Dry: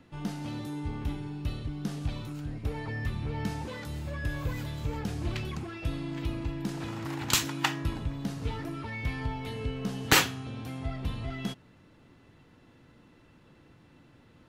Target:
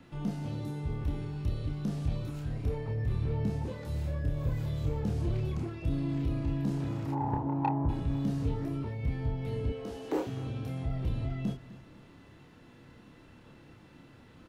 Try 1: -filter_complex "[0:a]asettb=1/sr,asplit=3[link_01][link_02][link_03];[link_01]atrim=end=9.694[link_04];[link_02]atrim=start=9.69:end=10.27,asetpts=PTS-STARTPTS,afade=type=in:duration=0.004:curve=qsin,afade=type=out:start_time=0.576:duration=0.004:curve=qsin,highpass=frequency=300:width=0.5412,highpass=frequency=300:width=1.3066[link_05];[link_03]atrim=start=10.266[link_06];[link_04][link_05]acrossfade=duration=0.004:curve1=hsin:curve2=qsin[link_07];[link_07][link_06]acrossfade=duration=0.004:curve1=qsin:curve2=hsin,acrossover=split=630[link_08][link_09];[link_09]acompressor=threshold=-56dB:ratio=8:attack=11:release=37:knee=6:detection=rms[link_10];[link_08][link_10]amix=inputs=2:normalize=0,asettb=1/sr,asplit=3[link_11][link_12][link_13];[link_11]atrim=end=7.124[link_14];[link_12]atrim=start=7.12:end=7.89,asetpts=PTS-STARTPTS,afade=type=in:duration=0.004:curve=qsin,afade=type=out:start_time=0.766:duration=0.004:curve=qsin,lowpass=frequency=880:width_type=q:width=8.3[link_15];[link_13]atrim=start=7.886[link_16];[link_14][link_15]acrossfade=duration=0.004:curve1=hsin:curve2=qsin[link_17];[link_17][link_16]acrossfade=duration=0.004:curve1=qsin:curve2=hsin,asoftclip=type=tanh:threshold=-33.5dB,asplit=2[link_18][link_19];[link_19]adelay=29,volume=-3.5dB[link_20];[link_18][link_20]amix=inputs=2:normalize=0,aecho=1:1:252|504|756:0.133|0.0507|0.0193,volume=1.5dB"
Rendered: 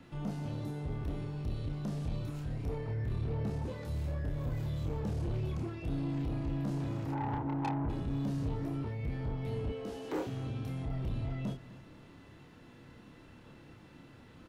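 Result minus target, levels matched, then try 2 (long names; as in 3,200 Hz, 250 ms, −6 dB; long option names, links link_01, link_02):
soft clipping: distortion +11 dB
-filter_complex "[0:a]asettb=1/sr,asplit=3[link_01][link_02][link_03];[link_01]atrim=end=9.694[link_04];[link_02]atrim=start=9.69:end=10.27,asetpts=PTS-STARTPTS,afade=type=in:duration=0.004:curve=qsin,afade=type=out:start_time=0.576:duration=0.004:curve=qsin,highpass=frequency=300:width=0.5412,highpass=frequency=300:width=1.3066[link_05];[link_03]atrim=start=10.266[link_06];[link_04][link_05]acrossfade=duration=0.004:curve1=hsin:curve2=qsin[link_07];[link_07][link_06]acrossfade=duration=0.004:curve1=qsin:curve2=hsin,acrossover=split=630[link_08][link_09];[link_09]acompressor=threshold=-56dB:ratio=8:attack=11:release=37:knee=6:detection=rms[link_10];[link_08][link_10]amix=inputs=2:normalize=0,asettb=1/sr,asplit=3[link_11][link_12][link_13];[link_11]atrim=end=7.124[link_14];[link_12]atrim=start=7.12:end=7.89,asetpts=PTS-STARTPTS,afade=type=in:duration=0.004:curve=qsin,afade=type=out:start_time=0.766:duration=0.004:curve=qsin,lowpass=frequency=880:width_type=q:width=8.3[link_15];[link_13]atrim=start=7.886[link_16];[link_14][link_15]acrossfade=duration=0.004:curve1=hsin:curve2=qsin[link_17];[link_17][link_16]acrossfade=duration=0.004:curve1=qsin:curve2=hsin,asoftclip=type=tanh:threshold=-23dB,asplit=2[link_18][link_19];[link_19]adelay=29,volume=-3.5dB[link_20];[link_18][link_20]amix=inputs=2:normalize=0,aecho=1:1:252|504|756:0.133|0.0507|0.0193,volume=1.5dB"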